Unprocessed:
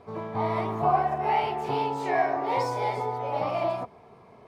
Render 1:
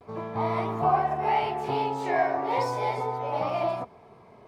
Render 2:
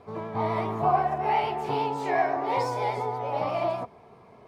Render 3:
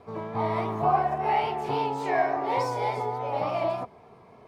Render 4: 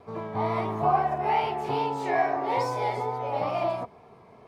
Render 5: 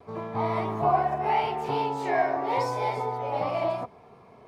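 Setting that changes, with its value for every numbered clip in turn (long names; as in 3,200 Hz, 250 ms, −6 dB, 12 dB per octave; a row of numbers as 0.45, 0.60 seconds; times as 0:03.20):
pitch vibrato, speed: 0.39, 8.3, 3.5, 2.3, 0.78 Hertz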